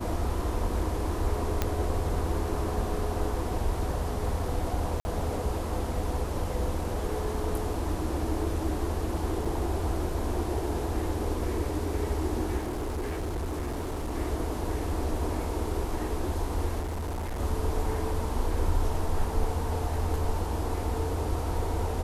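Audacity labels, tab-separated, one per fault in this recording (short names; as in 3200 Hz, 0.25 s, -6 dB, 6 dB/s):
1.620000	1.620000	pop -11 dBFS
5.000000	5.050000	gap 50 ms
9.450000	9.450000	gap 4.5 ms
12.570000	14.150000	clipped -28.5 dBFS
16.790000	17.400000	clipped -29.5 dBFS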